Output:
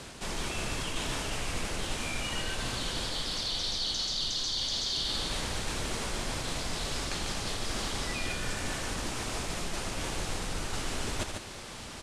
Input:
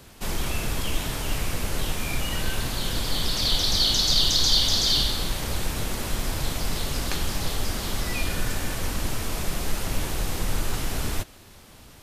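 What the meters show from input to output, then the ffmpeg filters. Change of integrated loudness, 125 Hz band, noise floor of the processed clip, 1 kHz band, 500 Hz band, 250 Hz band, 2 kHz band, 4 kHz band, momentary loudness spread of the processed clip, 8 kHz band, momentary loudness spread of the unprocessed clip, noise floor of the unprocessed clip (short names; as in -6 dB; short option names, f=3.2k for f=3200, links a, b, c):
-7.5 dB, -8.5 dB, -43 dBFS, -3.5 dB, -4.0 dB, -6.0 dB, -3.0 dB, -8.0 dB, 6 LU, -6.0 dB, 11 LU, -49 dBFS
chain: -af "lowpass=f=9.4k:w=0.5412,lowpass=f=9.4k:w=1.3066,lowshelf=f=200:g=-7,areverse,acompressor=threshold=-38dB:ratio=10,areverse,aecho=1:1:81.63|145.8:0.355|0.501,volume=7dB"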